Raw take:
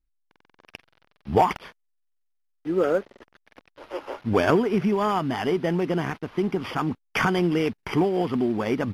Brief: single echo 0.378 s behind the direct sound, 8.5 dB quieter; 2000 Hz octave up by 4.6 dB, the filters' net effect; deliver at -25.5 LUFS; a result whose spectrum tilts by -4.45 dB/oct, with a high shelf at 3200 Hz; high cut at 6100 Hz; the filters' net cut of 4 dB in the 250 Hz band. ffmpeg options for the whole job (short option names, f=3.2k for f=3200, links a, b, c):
-af "lowpass=6.1k,equalizer=f=250:t=o:g=-6,equalizer=f=2k:t=o:g=9,highshelf=f=3.2k:g=-9,aecho=1:1:378:0.376"